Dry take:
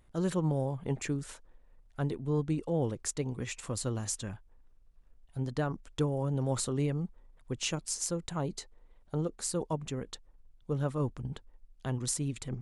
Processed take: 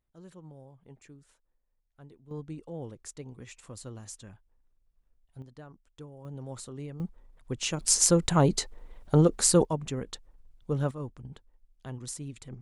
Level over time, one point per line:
−19 dB
from 0:02.31 −9 dB
from 0:05.42 −16 dB
from 0:06.25 −9.5 dB
from 0:07.00 +2 dB
from 0:07.80 +12 dB
from 0:09.65 +3 dB
from 0:10.91 −6 dB

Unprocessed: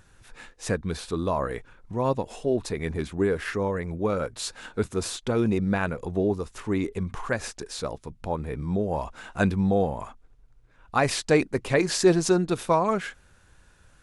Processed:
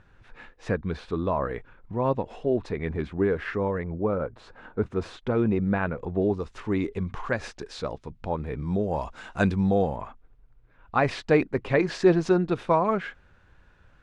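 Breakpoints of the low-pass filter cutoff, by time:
2,600 Hz
from 0:03.84 1,300 Hz
from 0:04.86 2,200 Hz
from 0:06.22 4,100 Hz
from 0:08.66 6,700 Hz
from 0:09.96 2,800 Hz

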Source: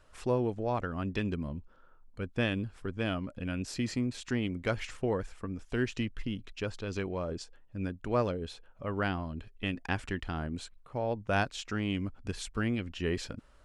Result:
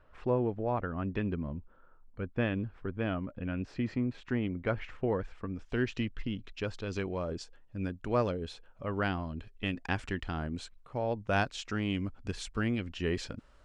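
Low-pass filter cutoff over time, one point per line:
0:04.91 2,100 Hz
0:05.59 4,700 Hz
0:06.36 4,700 Hz
0:06.97 8,000 Hz

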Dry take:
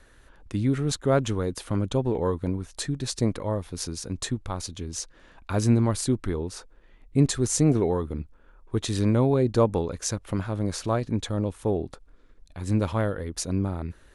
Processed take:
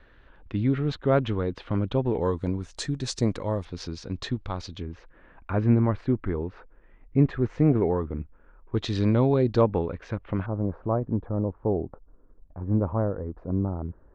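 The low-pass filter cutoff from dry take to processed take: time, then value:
low-pass filter 24 dB per octave
3,500 Hz
from 0:02.21 7,300 Hz
from 0:03.65 4,600 Hz
from 0:04.82 2,300 Hz
from 0:08.75 4,800 Hz
from 0:09.61 2,700 Hz
from 0:10.46 1,100 Hz

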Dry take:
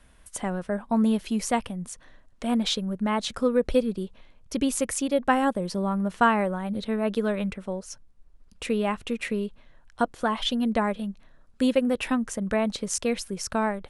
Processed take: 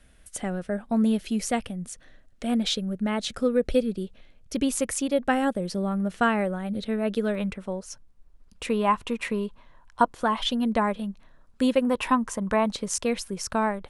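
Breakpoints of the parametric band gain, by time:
parametric band 1,000 Hz 0.4 octaves
−11 dB
from 0:04.56 −1.5 dB
from 0:05.19 −9 dB
from 0:07.35 +1 dB
from 0:08.68 +12 dB
from 0:10.14 +4 dB
from 0:11.82 +13.5 dB
from 0:12.66 +3.5 dB

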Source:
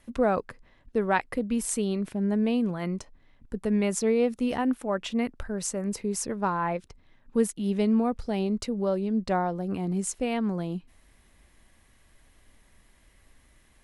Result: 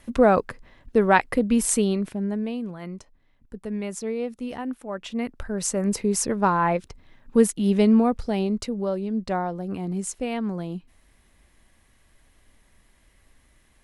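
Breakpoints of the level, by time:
0:01.77 +7 dB
0:02.56 −5 dB
0:04.84 −5 dB
0:05.81 +6.5 dB
0:07.87 +6.5 dB
0:08.93 0 dB

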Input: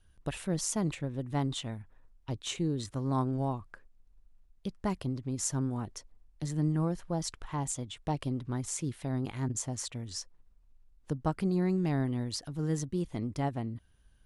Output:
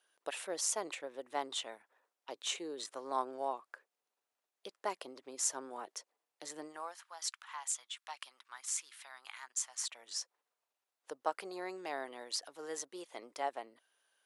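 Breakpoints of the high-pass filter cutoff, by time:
high-pass filter 24 dB per octave
0:06.59 450 Hz
0:07.06 1,100 Hz
0:09.71 1,100 Hz
0:10.14 500 Hz

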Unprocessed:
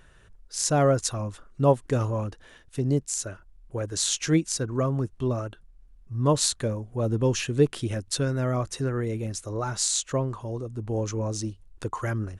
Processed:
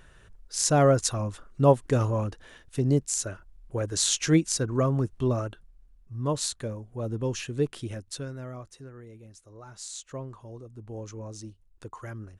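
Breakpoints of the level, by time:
0:05.43 +1 dB
0:06.22 −6 dB
0:07.88 −6 dB
0:08.92 −18 dB
0:09.54 −18 dB
0:10.22 −10.5 dB

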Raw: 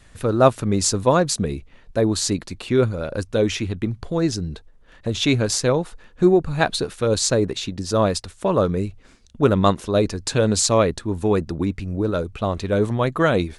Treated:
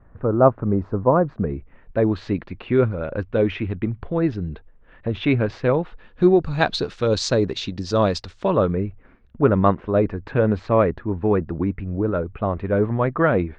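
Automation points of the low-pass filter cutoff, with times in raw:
low-pass filter 24 dB per octave
0:01.20 1,300 Hz
0:01.99 2,600 Hz
0:05.69 2,600 Hz
0:06.46 5,300 Hz
0:08.35 5,300 Hz
0:08.83 2,100 Hz

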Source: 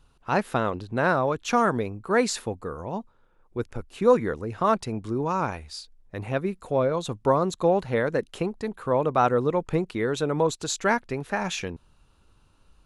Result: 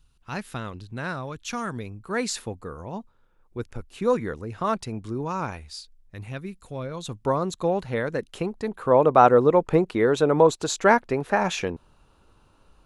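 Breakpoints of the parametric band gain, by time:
parametric band 610 Hz 2.9 octaves
0:01.67 −13 dB
0:02.43 −4 dB
0:05.64 −4 dB
0:06.24 −13 dB
0:06.83 −13 dB
0:07.26 −3 dB
0:08.27 −3 dB
0:09.02 +7 dB

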